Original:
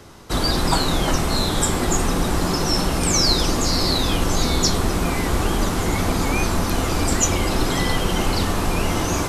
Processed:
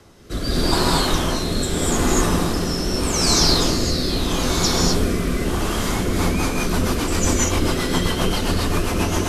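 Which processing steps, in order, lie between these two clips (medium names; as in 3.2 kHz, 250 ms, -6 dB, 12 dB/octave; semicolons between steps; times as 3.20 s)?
gated-style reverb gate 270 ms rising, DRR -3.5 dB; rotary cabinet horn 0.8 Hz, later 7.5 Hz, at 5.76 s; trim -2.5 dB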